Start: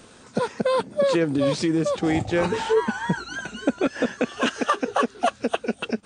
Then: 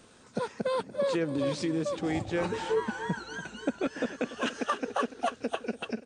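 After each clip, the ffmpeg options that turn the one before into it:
ffmpeg -i in.wav -af "aecho=1:1:289|578|867|1156|1445:0.188|0.0923|0.0452|0.0222|0.0109,volume=-8dB" out.wav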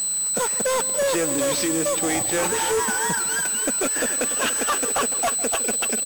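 ffmpeg -i in.wav -filter_complex "[0:a]aeval=exprs='val(0)+0.0178*sin(2*PI*8000*n/s)':channel_layout=same,asplit=2[link_01][link_02];[link_02]highpass=frequency=720:poles=1,volume=34dB,asoftclip=type=tanh:threshold=-15dB[link_03];[link_01][link_03]amix=inputs=2:normalize=0,lowpass=frequency=6400:poles=1,volume=-6dB,asplit=2[link_04][link_05];[link_05]adelay=157.4,volume=-16dB,highshelf=frequency=4000:gain=-3.54[link_06];[link_04][link_06]amix=inputs=2:normalize=0" out.wav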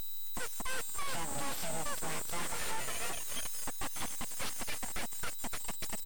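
ffmpeg -i in.wav -af "highshelf=frequency=8300:gain=-9.5,alimiter=limit=-19dB:level=0:latency=1:release=293,aeval=exprs='abs(val(0))':channel_layout=same,volume=-7dB" out.wav

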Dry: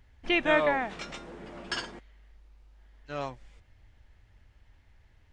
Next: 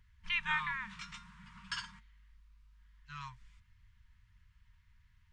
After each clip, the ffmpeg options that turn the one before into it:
ffmpeg -i in.wav -af "afftfilt=real='re*(1-between(b*sr/4096,220,910))':imag='im*(1-between(b*sr/4096,220,910))':win_size=4096:overlap=0.75,volume=-6dB" out.wav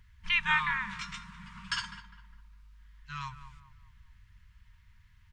ffmpeg -i in.wav -filter_complex "[0:a]asplit=2[link_01][link_02];[link_02]adelay=203,lowpass=frequency=1700:poles=1,volume=-11.5dB,asplit=2[link_03][link_04];[link_04]adelay=203,lowpass=frequency=1700:poles=1,volume=0.44,asplit=2[link_05][link_06];[link_06]adelay=203,lowpass=frequency=1700:poles=1,volume=0.44,asplit=2[link_07][link_08];[link_08]adelay=203,lowpass=frequency=1700:poles=1,volume=0.44[link_09];[link_01][link_03][link_05][link_07][link_09]amix=inputs=5:normalize=0,volume=6.5dB" out.wav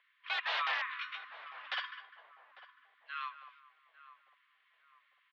ffmpeg -i in.wav -filter_complex "[0:a]aeval=exprs='(mod(16.8*val(0)+1,2)-1)/16.8':channel_layout=same,highpass=frequency=550:width_type=q:width=0.5412,highpass=frequency=550:width_type=q:width=1.307,lowpass=frequency=3600:width_type=q:width=0.5176,lowpass=frequency=3600:width_type=q:width=0.7071,lowpass=frequency=3600:width_type=q:width=1.932,afreqshift=87,asplit=2[link_01][link_02];[link_02]adelay=849,lowpass=frequency=860:poles=1,volume=-12dB,asplit=2[link_03][link_04];[link_04]adelay=849,lowpass=frequency=860:poles=1,volume=0.54,asplit=2[link_05][link_06];[link_06]adelay=849,lowpass=frequency=860:poles=1,volume=0.54,asplit=2[link_07][link_08];[link_08]adelay=849,lowpass=frequency=860:poles=1,volume=0.54,asplit=2[link_09][link_10];[link_10]adelay=849,lowpass=frequency=860:poles=1,volume=0.54,asplit=2[link_11][link_12];[link_12]adelay=849,lowpass=frequency=860:poles=1,volume=0.54[link_13];[link_01][link_03][link_05][link_07][link_09][link_11][link_13]amix=inputs=7:normalize=0" out.wav

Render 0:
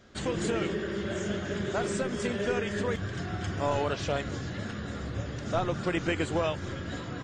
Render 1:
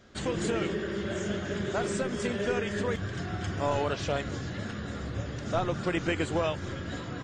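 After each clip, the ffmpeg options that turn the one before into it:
ffmpeg -i in.wav -af anull out.wav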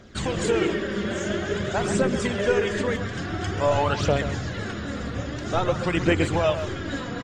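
ffmpeg -i in.wav -filter_complex "[0:a]aphaser=in_gain=1:out_gain=1:delay=4.4:decay=0.44:speed=0.49:type=triangular,asplit=2[link_01][link_02];[link_02]adelay=130,highpass=300,lowpass=3400,asoftclip=type=hard:threshold=-21.5dB,volume=-9dB[link_03];[link_01][link_03]amix=inputs=2:normalize=0,volume=5dB" out.wav

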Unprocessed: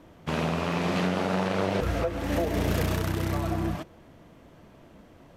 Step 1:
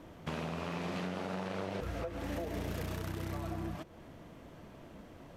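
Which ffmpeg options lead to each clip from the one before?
ffmpeg -i in.wav -af "acompressor=threshold=-39dB:ratio=3" out.wav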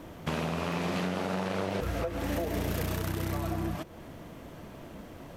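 ffmpeg -i in.wav -af "highshelf=frequency=11000:gain=9.5,volume=6.5dB" out.wav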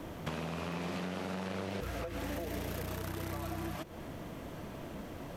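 ffmpeg -i in.wav -filter_complex "[0:a]acrossover=split=390|1400[link_01][link_02][link_03];[link_01]acompressor=threshold=-41dB:ratio=4[link_04];[link_02]acompressor=threshold=-45dB:ratio=4[link_05];[link_03]acompressor=threshold=-48dB:ratio=4[link_06];[link_04][link_05][link_06]amix=inputs=3:normalize=0,volume=1.5dB" out.wav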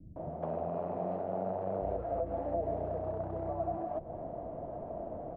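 ffmpeg -i in.wav -filter_complex "[0:a]lowpass=frequency=680:width_type=q:width=4.9,acrossover=split=210[link_01][link_02];[link_02]adelay=160[link_03];[link_01][link_03]amix=inputs=2:normalize=0,volume=-1.5dB" out.wav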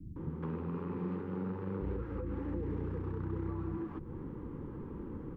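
ffmpeg -i in.wav -af "asuperstop=centerf=660:order=4:qfactor=0.94,volume=5dB" out.wav

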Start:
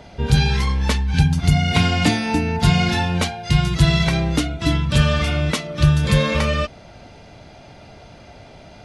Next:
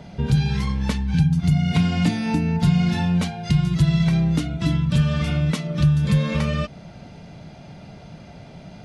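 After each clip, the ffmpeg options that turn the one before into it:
ffmpeg -i in.wav -af "equalizer=frequency=170:width_type=o:width=0.86:gain=13,acompressor=threshold=-18dB:ratio=2,volume=-3dB" out.wav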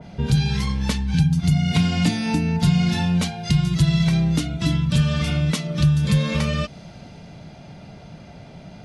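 ffmpeg -i in.wav -af "adynamicequalizer=threshold=0.00447:dfrequency=2800:dqfactor=0.7:tfrequency=2800:tqfactor=0.7:attack=5:release=100:ratio=0.375:range=3:mode=boostabove:tftype=highshelf" out.wav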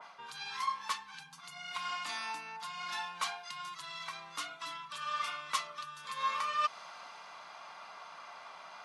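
ffmpeg -i in.wav -af "areverse,acompressor=threshold=-27dB:ratio=10,areverse,highpass=frequency=1100:width_type=q:width=8,volume=-3.5dB" out.wav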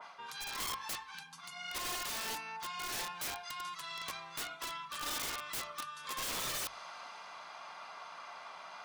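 ffmpeg -i in.wav -af "aeval=exprs='(mod(50.1*val(0)+1,2)-1)/50.1':channel_layout=same,bandreject=frequency=50:width_type=h:width=6,bandreject=frequency=100:width_type=h:width=6,bandreject=frequency=150:width_type=h:width=6,bandreject=frequency=200:width_type=h:width=6,volume=1dB" out.wav

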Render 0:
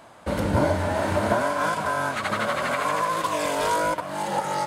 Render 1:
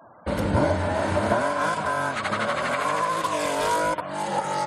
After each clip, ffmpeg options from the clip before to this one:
ffmpeg -i in.wav -af "afftfilt=real='re*gte(hypot(re,im),0.00562)':imag='im*gte(hypot(re,im),0.00562)':win_size=1024:overlap=0.75" out.wav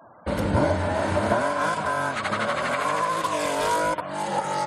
ffmpeg -i in.wav -af anull out.wav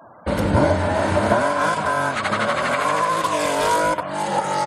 ffmpeg -i in.wav -filter_complex "[0:a]asplit=2[link_01][link_02];[link_02]adelay=93.29,volume=-20dB,highshelf=frequency=4000:gain=-2.1[link_03];[link_01][link_03]amix=inputs=2:normalize=0,volume=4.5dB" out.wav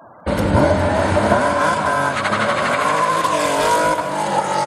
ffmpeg -i in.wav -af "aecho=1:1:203|406|609|812|1015|1218|1421:0.266|0.154|0.0895|0.0519|0.0301|0.0175|0.0101,volume=2.5dB" out.wav

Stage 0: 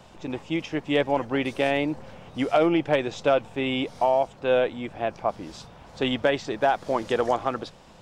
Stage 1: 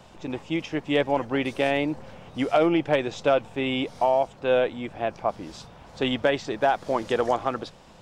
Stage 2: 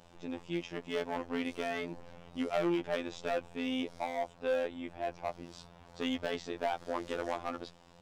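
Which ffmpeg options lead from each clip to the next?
ffmpeg -i in.wav -af anull out.wav
ffmpeg -i in.wav -filter_complex "[0:a]acrossover=split=3500[link_01][link_02];[link_01]volume=20.5dB,asoftclip=hard,volume=-20.5dB[link_03];[link_03][link_02]amix=inputs=2:normalize=0,afftfilt=real='hypot(re,im)*cos(PI*b)':imag='0':win_size=2048:overlap=0.75,volume=-5.5dB" out.wav

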